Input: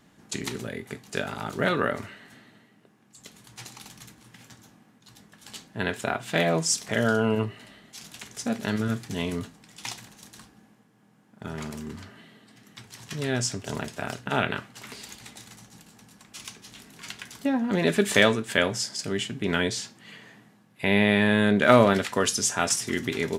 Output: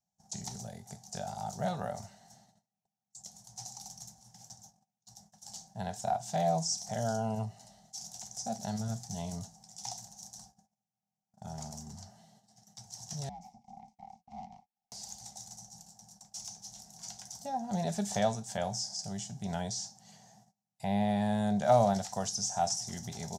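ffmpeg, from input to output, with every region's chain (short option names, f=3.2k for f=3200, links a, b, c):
-filter_complex "[0:a]asettb=1/sr,asplit=3[a][b][c];[a]atrim=end=13.294[d];[b]atrim=start=13.29:end=14.92,asetpts=PTS-STARTPTS,afade=t=in:d=0.004:c=qsin,afade=t=out:st=1.626:d=0.004:c=qsin,aeval=exprs='abs(val(0))':c=same,asplit=3[e][f][g];[e]bandpass=f=300:t=q:w=8,volume=0dB[h];[f]bandpass=f=870:t=q:w=8,volume=-6dB[i];[g]bandpass=f=2.24k:t=q:w=8,volume=-9dB[j];[h][i][j]amix=inputs=3:normalize=0,afreqshift=-67[k];[c]atrim=start=14.916[l];[d][k]acrossfade=d=0.004:c1=hsin:c2=qsin[m];[m][l]acrossfade=d=0.004:c1=qsin:c2=hsin,agate=range=-25dB:threshold=-53dB:ratio=16:detection=peak,acrossover=split=3600[n][o];[o]acompressor=threshold=-40dB:ratio=4:attack=1:release=60[p];[n][p]amix=inputs=2:normalize=0,firequalizer=gain_entry='entry(200,0);entry(280,-21);entry(460,-13);entry(750,10);entry(1100,-13);entry(2500,-18);entry(5700,13);entry(10000,0)':delay=0.05:min_phase=1,volume=-5.5dB"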